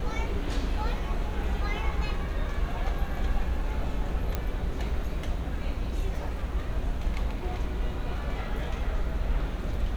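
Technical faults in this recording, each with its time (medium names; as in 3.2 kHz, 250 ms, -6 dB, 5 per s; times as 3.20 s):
4.35 s: pop -15 dBFS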